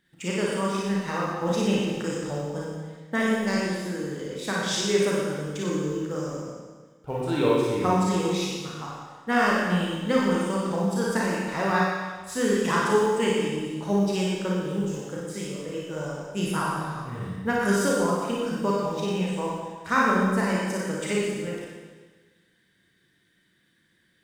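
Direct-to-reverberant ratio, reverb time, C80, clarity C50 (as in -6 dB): -5.5 dB, 1.4 s, 0.5 dB, -2.0 dB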